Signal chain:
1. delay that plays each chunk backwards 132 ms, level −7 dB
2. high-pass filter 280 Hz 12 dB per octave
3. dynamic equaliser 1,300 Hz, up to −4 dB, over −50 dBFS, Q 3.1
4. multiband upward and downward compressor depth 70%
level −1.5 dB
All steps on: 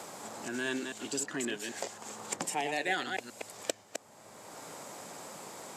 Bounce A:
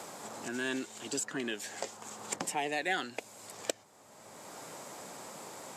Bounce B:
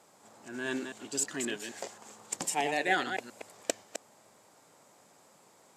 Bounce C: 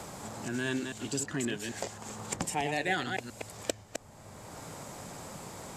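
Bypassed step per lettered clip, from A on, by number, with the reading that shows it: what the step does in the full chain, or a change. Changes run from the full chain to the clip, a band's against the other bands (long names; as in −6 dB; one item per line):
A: 1, change in momentary loudness spread +2 LU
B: 4, change in momentary loudness spread +4 LU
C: 2, change in crest factor −2.5 dB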